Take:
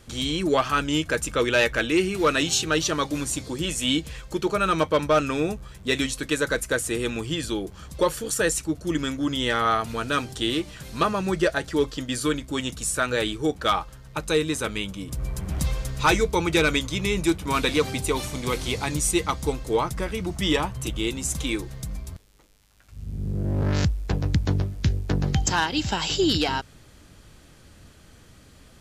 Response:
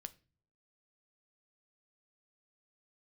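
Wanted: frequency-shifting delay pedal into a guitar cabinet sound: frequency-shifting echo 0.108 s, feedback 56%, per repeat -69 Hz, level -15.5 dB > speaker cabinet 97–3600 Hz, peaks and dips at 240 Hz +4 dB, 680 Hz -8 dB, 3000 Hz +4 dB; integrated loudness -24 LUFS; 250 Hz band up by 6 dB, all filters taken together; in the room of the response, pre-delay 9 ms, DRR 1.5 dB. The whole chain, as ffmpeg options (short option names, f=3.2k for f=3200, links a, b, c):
-filter_complex "[0:a]equalizer=f=250:t=o:g=6.5,asplit=2[a][b];[1:a]atrim=start_sample=2205,adelay=9[c];[b][c]afir=irnorm=-1:irlink=0,volume=3.5dB[d];[a][d]amix=inputs=2:normalize=0,asplit=6[e][f][g][h][i][j];[f]adelay=108,afreqshift=-69,volume=-15.5dB[k];[g]adelay=216,afreqshift=-138,volume=-20.5dB[l];[h]adelay=324,afreqshift=-207,volume=-25.6dB[m];[i]adelay=432,afreqshift=-276,volume=-30.6dB[n];[j]adelay=540,afreqshift=-345,volume=-35.6dB[o];[e][k][l][m][n][o]amix=inputs=6:normalize=0,highpass=97,equalizer=f=240:t=q:w=4:g=4,equalizer=f=680:t=q:w=4:g=-8,equalizer=f=3k:t=q:w=4:g=4,lowpass=f=3.6k:w=0.5412,lowpass=f=3.6k:w=1.3066,volume=-3.5dB"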